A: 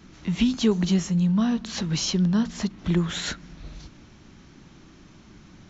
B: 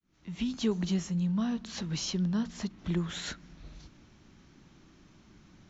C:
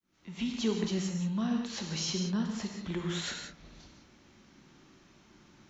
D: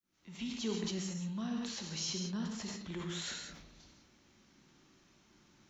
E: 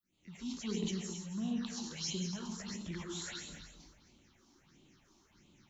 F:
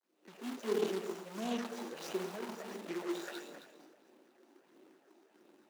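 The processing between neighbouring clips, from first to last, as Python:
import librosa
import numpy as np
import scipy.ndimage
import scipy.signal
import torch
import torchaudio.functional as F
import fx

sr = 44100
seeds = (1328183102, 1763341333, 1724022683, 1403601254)

y1 = fx.fade_in_head(x, sr, length_s=0.62)
y1 = y1 * librosa.db_to_amplitude(-8.0)
y2 = fx.low_shelf(y1, sr, hz=140.0, db=-11.0)
y2 = fx.rev_gated(y2, sr, seeds[0], gate_ms=210, shape='flat', drr_db=2.0)
y3 = fx.high_shelf(y2, sr, hz=4100.0, db=6.5)
y3 = fx.sustainer(y3, sr, db_per_s=44.0)
y3 = y3 * librosa.db_to_amplitude(-7.5)
y4 = fx.phaser_stages(y3, sr, stages=6, low_hz=130.0, high_hz=1600.0, hz=1.5, feedback_pct=25)
y4 = y4 + 10.0 ** (-10.5 / 20.0) * np.pad(y4, (int(265 * sr / 1000.0), 0))[:len(y4)]
y4 = y4 * librosa.db_to_amplitude(1.5)
y5 = scipy.signal.medfilt(y4, 41)
y5 = scipy.signal.sosfilt(scipy.signal.butter(4, 370.0, 'highpass', fs=sr, output='sos'), y5)
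y5 = y5 * librosa.db_to_amplitude(13.5)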